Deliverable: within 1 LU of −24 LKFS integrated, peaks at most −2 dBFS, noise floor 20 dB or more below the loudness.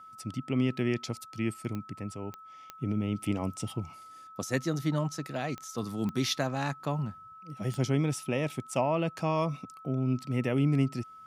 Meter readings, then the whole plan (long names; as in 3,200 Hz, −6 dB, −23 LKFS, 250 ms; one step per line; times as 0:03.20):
number of clicks 6; interfering tone 1,300 Hz; level of the tone −47 dBFS; integrated loudness −32.0 LKFS; sample peak −14.5 dBFS; target loudness −24.0 LKFS
→ click removal
notch filter 1,300 Hz, Q 30
level +8 dB